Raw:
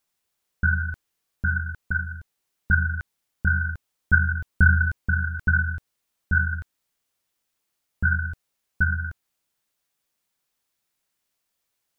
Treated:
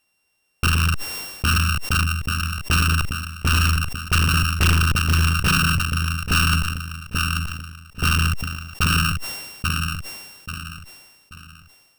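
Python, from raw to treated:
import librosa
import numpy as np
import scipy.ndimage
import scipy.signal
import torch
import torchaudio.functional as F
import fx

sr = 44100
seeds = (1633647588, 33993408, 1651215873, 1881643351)

p1 = np.r_[np.sort(x[:len(x) // 16 * 16].reshape(-1, 16), axis=1).ravel(), x[len(x) // 16 * 16:]]
p2 = fx.dynamic_eq(p1, sr, hz=120.0, q=0.8, threshold_db=-33.0, ratio=4.0, max_db=3)
p3 = fx.over_compress(p2, sr, threshold_db=-25.0, ratio=-0.5)
p4 = p2 + (p3 * librosa.db_to_amplitude(-2.5))
p5 = fx.cheby_harmonics(p4, sr, harmonics=(6,), levels_db=(-13,), full_scale_db=-3.5)
p6 = p5 + fx.echo_feedback(p5, sr, ms=835, feedback_pct=32, wet_db=-7, dry=0)
p7 = np.clip(10.0 ** (15.5 / 20.0) * p6, -1.0, 1.0) / 10.0 ** (15.5 / 20.0)
p8 = fx.sustainer(p7, sr, db_per_s=43.0)
y = p8 * librosa.db_to_amplitude(1.5)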